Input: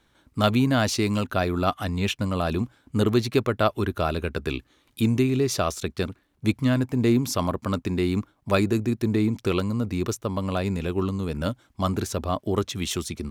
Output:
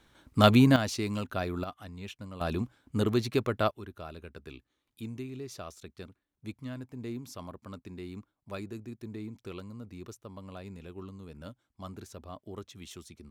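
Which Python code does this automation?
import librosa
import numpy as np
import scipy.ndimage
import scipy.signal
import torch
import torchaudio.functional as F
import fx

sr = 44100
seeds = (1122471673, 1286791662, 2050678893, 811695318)

y = fx.gain(x, sr, db=fx.steps((0.0, 1.0), (0.76, -8.5), (1.64, -17.0), (2.41, -6.0), (3.71, -18.0)))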